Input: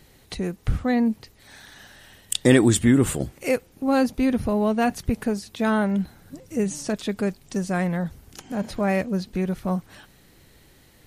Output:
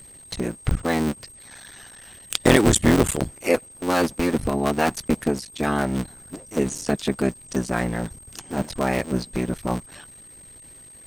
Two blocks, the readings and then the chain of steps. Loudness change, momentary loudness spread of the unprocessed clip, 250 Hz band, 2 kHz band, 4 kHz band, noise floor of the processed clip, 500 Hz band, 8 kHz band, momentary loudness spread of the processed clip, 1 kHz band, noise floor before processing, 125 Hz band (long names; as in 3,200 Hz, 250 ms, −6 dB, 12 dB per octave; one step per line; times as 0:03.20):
0.0 dB, 12 LU, −1.5 dB, +2.5 dB, +3.5 dB, −47 dBFS, +1.0 dB, +3.0 dB, 23 LU, +2.5 dB, −55 dBFS, 0.0 dB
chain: sub-harmonics by changed cycles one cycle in 3, muted
steady tone 8,400 Hz −41 dBFS
harmonic and percussive parts rebalanced percussive +8 dB
level −3 dB